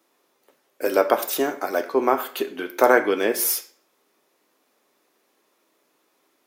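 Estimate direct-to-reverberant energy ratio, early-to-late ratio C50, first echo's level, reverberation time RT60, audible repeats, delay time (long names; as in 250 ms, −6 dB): 6.5 dB, 12.5 dB, no echo audible, 0.45 s, no echo audible, no echo audible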